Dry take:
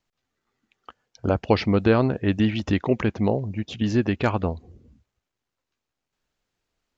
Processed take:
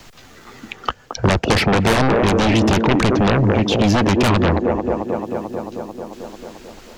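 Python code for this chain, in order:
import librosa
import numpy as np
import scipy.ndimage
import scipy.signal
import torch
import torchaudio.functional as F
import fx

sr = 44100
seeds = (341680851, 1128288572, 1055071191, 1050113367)

p1 = fx.echo_wet_bandpass(x, sr, ms=221, feedback_pct=58, hz=490.0, wet_db=-7.5)
p2 = fx.fold_sine(p1, sr, drive_db=19, ceiling_db=-4.5)
p3 = p1 + F.gain(torch.from_numpy(p2), -7.5).numpy()
p4 = fx.band_squash(p3, sr, depth_pct=70)
y = F.gain(torch.from_numpy(p4), -1.5).numpy()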